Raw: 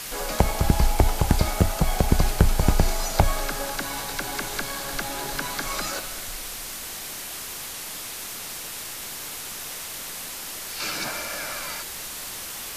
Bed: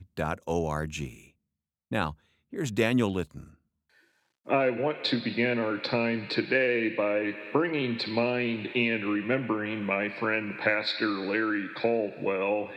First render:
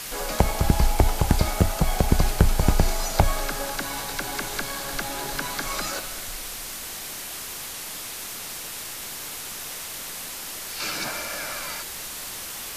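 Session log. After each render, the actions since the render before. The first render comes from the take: nothing audible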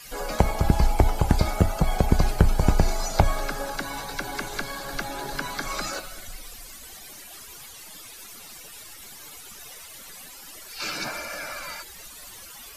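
denoiser 15 dB, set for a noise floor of -36 dBFS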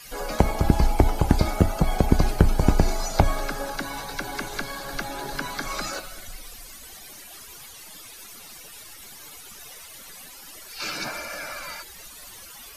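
notch 7500 Hz, Q 24; dynamic EQ 290 Hz, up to +5 dB, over -37 dBFS, Q 1.5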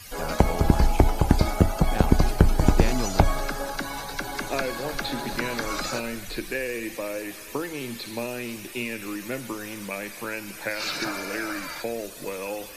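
add bed -5 dB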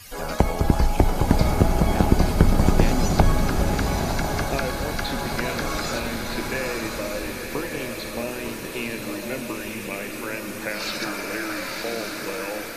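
swung echo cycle 1.213 s, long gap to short 3:1, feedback 58%, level -13.5 dB; bloom reverb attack 1.13 s, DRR 2.5 dB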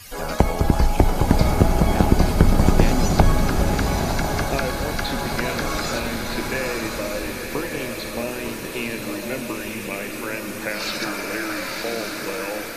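gain +2 dB; limiter -2 dBFS, peak gain reduction 1.5 dB

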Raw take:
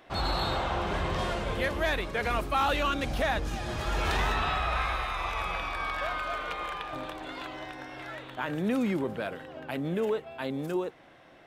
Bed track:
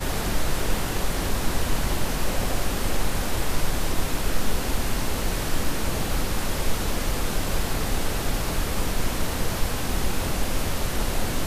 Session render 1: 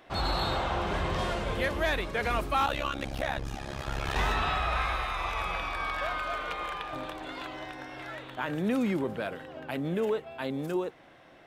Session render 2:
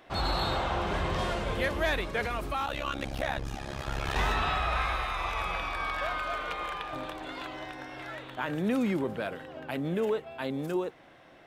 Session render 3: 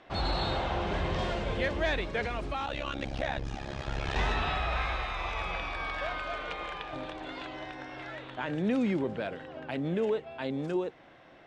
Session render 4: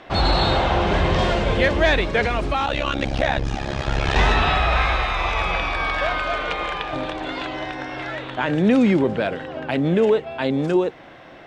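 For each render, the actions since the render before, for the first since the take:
2.66–4.16 AM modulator 68 Hz, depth 95%
2.25–2.87 compressor 3:1, threshold -29 dBFS
Bessel low-pass 5400 Hz, order 6; dynamic EQ 1200 Hz, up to -5 dB, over -46 dBFS, Q 2
gain +12 dB

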